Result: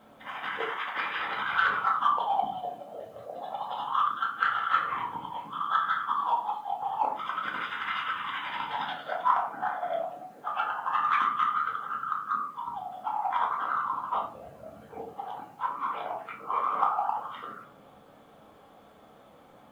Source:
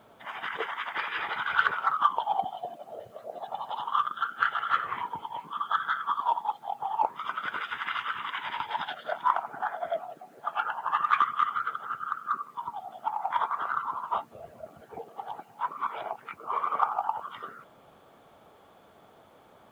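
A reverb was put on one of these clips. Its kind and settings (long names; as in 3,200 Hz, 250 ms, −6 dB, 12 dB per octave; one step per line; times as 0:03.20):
rectangular room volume 360 cubic metres, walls furnished, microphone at 2.1 metres
level −2.5 dB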